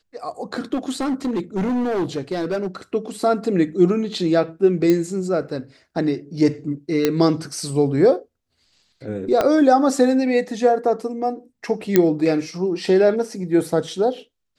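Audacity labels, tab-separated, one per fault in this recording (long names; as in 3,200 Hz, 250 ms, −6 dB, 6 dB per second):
0.730000	2.670000	clipping −18.5 dBFS
4.900000	4.900000	click −7 dBFS
7.050000	7.050000	click −4 dBFS
9.410000	9.410000	click −6 dBFS
11.960000	11.960000	click −1 dBFS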